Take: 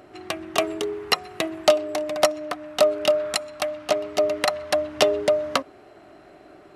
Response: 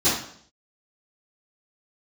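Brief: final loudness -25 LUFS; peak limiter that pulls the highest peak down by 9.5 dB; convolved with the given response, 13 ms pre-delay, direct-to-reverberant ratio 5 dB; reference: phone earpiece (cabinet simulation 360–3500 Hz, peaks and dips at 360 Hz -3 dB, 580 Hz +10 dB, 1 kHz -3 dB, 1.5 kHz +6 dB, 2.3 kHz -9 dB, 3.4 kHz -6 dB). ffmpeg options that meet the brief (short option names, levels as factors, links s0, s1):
-filter_complex "[0:a]alimiter=limit=0.211:level=0:latency=1,asplit=2[s0][s1];[1:a]atrim=start_sample=2205,adelay=13[s2];[s1][s2]afir=irnorm=-1:irlink=0,volume=0.0841[s3];[s0][s3]amix=inputs=2:normalize=0,highpass=360,equalizer=f=360:t=q:w=4:g=-3,equalizer=f=580:t=q:w=4:g=10,equalizer=f=1000:t=q:w=4:g=-3,equalizer=f=1500:t=q:w=4:g=6,equalizer=f=2300:t=q:w=4:g=-9,equalizer=f=3400:t=q:w=4:g=-6,lowpass=f=3500:w=0.5412,lowpass=f=3500:w=1.3066,volume=0.596"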